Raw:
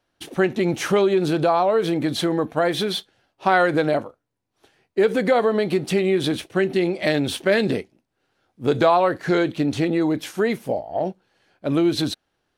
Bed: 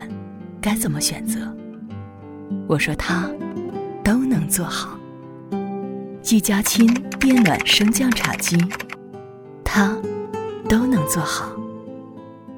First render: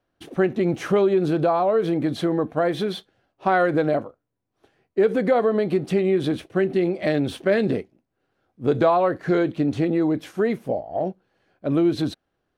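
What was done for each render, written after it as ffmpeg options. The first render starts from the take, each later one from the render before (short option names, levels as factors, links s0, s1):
-af "highshelf=f=2100:g=-11.5,bandreject=f=890:w=12"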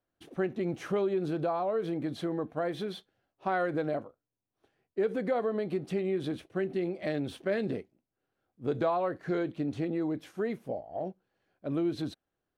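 -af "volume=0.299"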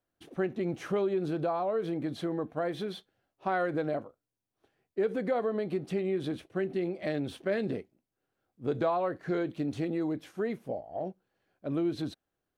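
-filter_complex "[0:a]asettb=1/sr,asplit=3[s0][s1][s2];[s0]atrim=end=9.504[s3];[s1]atrim=start=9.5:end=10.14,asetpts=PTS-STARTPTS,afade=t=in:d=0.004:c=qsin,afade=t=out:st=0.636:d=0.004:c=qsin,highshelf=f=4500:g=7[s4];[s2]atrim=start=10.136[s5];[s3][s4]acrossfade=d=0.004:c1=hsin:c2=qsin[s6];[s6][s5]acrossfade=d=0.004:c1=qsin:c2=hsin"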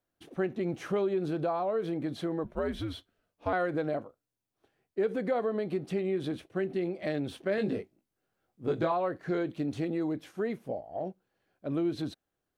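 -filter_complex "[0:a]asettb=1/sr,asplit=3[s0][s1][s2];[s0]atrim=end=2.444[s3];[s1]atrim=start=2.44:end=3.53,asetpts=PTS-STARTPTS,afade=t=in:d=0.004:c=qsin,afade=t=out:st=1.086:d=0.004:c=qsin,afreqshift=-100[s4];[s2]atrim=start=3.526[s5];[s3][s4]acrossfade=d=0.004:c1=hsin:c2=qsin[s6];[s6][s5]acrossfade=d=0.004:c1=qsin:c2=hsin,asettb=1/sr,asplit=3[s7][s8][s9];[s7]atrim=end=7.564[s10];[s8]atrim=start=7.56:end=8.92,asetpts=PTS-STARTPTS,afade=t=in:d=0.004:c=qsin,afade=t=out:st=1.356:d=0.004:c=qsin,asplit=2[s11][s12];[s12]adelay=19,volume=0.708[s13];[s11][s13]amix=inputs=2:normalize=0,atrim=end_sample=59976[s14];[s9]atrim=start=8.916[s15];[s10][s14]acrossfade=d=0.004:c1=hsin:c2=qsin[s16];[s16][s15]acrossfade=d=0.004:c1=qsin:c2=hsin"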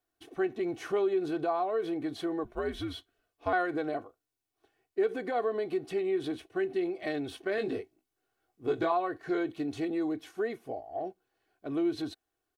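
-af "lowshelf=f=360:g=-5.5,aecho=1:1:2.7:0.64"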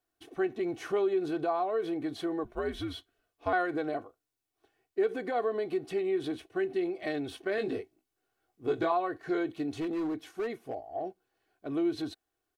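-filter_complex "[0:a]asettb=1/sr,asplit=3[s0][s1][s2];[s0]atrim=end=9.764[s3];[s1]atrim=start=9.76:end=10.86,asetpts=PTS-STARTPTS,afade=t=in:d=0.004:c=qsin,afade=t=out:st=1.096:d=0.004:c=qsin,volume=28.2,asoftclip=hard,volume=0.0355[s4];[s2]atrim=start=10.856[s5];[s3][s4]acrossfade=d=0.004:c1=hsin:c2=qsin[s6];[s6][s5]acrossfade=d=0.004:c1=qsin:c2=hsin"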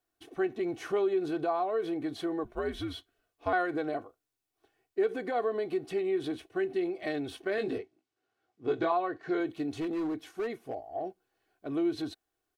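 -filter_complex "[0:a]asettb=1/sr,asplit=3[s0][s1][s2];[s0]atrim=end=7.784[s3];[s1]atrim=start=7.78:end=9.4,asetpts=PTS-STARTPTS,afade=t=in:d=0.004:c=qsin,afade=t=out:st=1.616:d=0.004:c=qsin,highpass=100,lowpass=5600[s4];[s2]atrim=start=9.396[s5];[s3][s4]acrossfade=d=0.004:c1=hsin:c2=qsin[s6];[s6][s5]acrossfade=d=0.004:c1=qsin:c2=hsin"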